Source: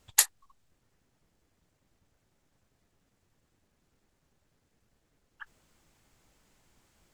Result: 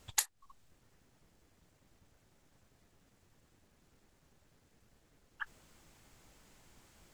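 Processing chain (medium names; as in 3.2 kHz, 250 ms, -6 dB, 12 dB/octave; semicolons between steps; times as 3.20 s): compression 8:1, threshold -34 dBFS, peak gain reduction 18 dB; trim +4.5 dB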